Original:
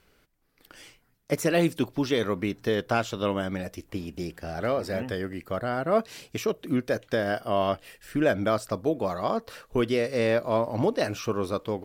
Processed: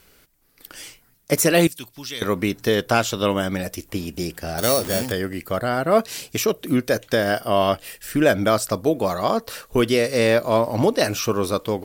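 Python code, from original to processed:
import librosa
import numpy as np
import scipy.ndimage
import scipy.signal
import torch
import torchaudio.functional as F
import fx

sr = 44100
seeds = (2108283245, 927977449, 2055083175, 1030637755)

y = fx.tone_stack(x, sr, knobs='5-5-5', at=(1.67, 2.22))
y = fx.sample_hold(y, sr, seeds[0], rate_hz=5000.0, jitter_pct=0, at=(4.58, 5.12))
y = fx.high_shelf(y, sr, hz=5000.0, db=12.0)
y = F.gain(torch.from_numpy(y), 6.0).numpy()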